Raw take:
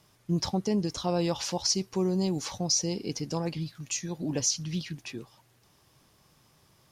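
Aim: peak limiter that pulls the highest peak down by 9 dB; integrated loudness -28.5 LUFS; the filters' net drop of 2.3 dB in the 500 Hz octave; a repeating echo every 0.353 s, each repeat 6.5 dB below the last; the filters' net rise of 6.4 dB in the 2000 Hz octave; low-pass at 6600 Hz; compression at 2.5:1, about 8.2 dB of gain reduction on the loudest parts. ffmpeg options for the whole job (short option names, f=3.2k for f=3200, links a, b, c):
-af "lowpass=6.6k,equalizer=f=500:t=o:g=-3.5,equalizer=f=2k:t=o:g=8.5,acompressor=threshold=-36dB:ratio=2.5,alimiter=level_in=6.5dB:limit=-24dB:level=0:latency=1,volume=-6.5dB,aecho=1:1:353|706|1059|1412|1765|2118:0.473|0.222|0.105|0.0491|0.0231|0.0109,volume=10dB"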